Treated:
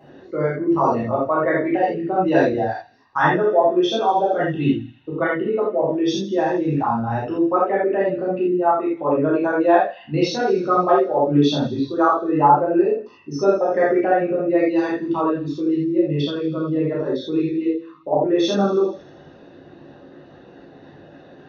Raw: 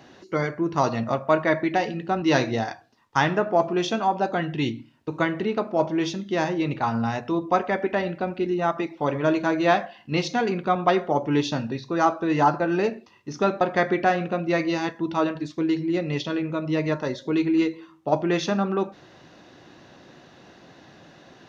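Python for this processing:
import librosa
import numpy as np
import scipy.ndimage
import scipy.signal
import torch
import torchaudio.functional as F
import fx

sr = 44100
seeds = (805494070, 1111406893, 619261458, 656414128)

y = fx.envelope_sharpen(x, sr, power=2.0)
y = fx.echo_wet_highpass(y, sr, ms=80, feedback_pct=70, hz=2900.0, wet_db=-16)
y = fx.rev_gated(y, sr, seeds[0], gate_ms=110, shape='flat', drr_db=-7.5)
y = y * 10.0 ** (-2.5 / 20.0)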